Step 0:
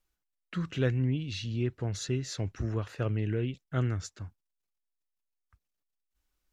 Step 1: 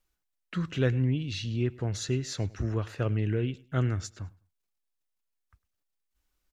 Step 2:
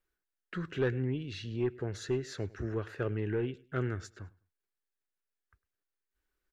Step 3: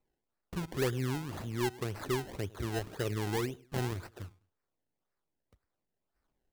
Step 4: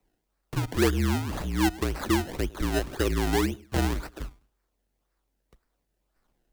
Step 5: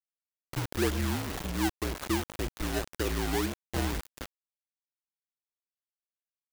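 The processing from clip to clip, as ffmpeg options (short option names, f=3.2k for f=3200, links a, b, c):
-af "aecho=1:1:103|206:0.075|0.0202,volume=2dB"
-af "equalizer=f=400:t=o:w=0.67:g=11,equalizer=f=1.6k:t=o:w=0.67:g=10,equalizer=f=6.3k:t=o:w=0.67:g=-3,aeval=exprs='(tanh(5.01*val(0)+0.2)-tanh(0.2))/5.01':c=same,volume=-7.5dB"
-filter_complex "[0:a]asplit=2[a][b];[b]acompressor=threshold=-40dB:ratio=6,volume=-2dB[c];[a][c]amix=inputs=2:normalize=0,acrusher=samples=26:mix=1:aa=0.000001:lfo=1:lforange=26:lforate=1.9,volume=-2.5dB"
-af "afreqshift=-47,volume=8.5dB"
-af "acrusher=bits=4:mix=0:aa=0.000001,volume=-5.5dB"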